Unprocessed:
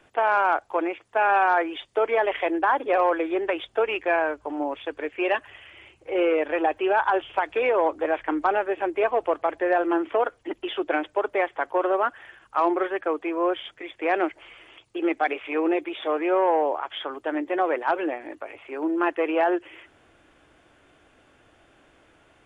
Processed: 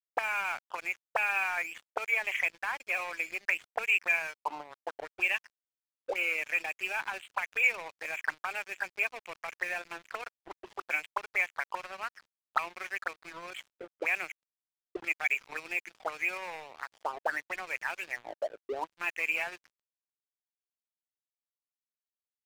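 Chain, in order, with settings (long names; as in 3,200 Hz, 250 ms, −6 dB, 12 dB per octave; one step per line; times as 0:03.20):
envelope filter 290–2,400 Hz, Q 8.1, up, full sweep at −22 dBFS
leveller curve on the samples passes 1
dead-zone distortion −51.5 dBFS
level +6 dB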